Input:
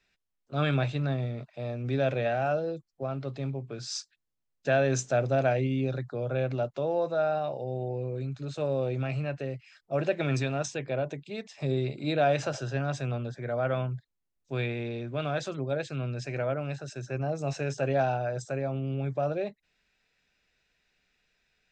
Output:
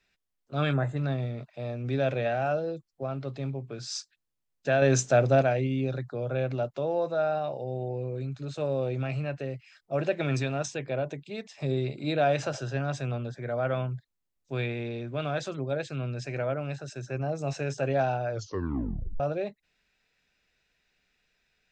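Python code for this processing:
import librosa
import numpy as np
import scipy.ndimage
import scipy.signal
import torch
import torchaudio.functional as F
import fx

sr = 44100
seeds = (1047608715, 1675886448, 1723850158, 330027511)

y = fx.spec_box(x, sr, start_s=0.72, length_s=0.25, low_hz=2100.0, high_hz=6300.0, gain_db=-19)
y = fx.edit(y, sr, fx.clip_gain(start_s=4.82, length_s=0.6, db=4.5),
    fx.tape_stop(start_s=18.3, length_s=0.9), tone=tone)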